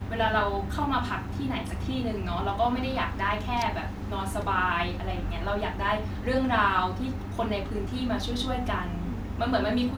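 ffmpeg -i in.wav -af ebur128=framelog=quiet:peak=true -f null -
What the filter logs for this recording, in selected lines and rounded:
Integrated loudness:
  I:         -28.5 LUFS
  Threshold: -38.5 LUFS
Loudness range:
  LRA:         1.8 LU
  Threshold: -48.5 LUFS
  LRA low:   -29.4 LUFS
  LRA high:  -27.5 LUFS
True peak:
  Peak:       -9.8 dBFS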